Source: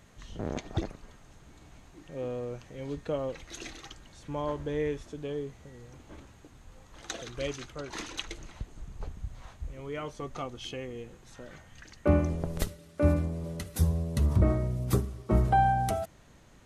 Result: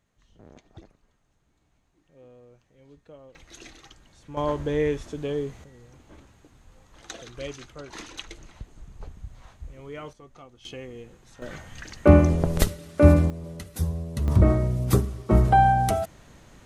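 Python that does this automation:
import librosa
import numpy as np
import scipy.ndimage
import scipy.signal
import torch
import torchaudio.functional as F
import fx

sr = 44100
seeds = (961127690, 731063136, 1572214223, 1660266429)

y = fx.gain(x, sr, db=fx.steps((0.0, -16.0), (3.35, -3.5), (4.37, 6.5), (5.64, -1.5), (10.13, -11.0), (10.65, -0.5), (11.42, 9.5), (13.3, -1.0), (14.28, 6.0)))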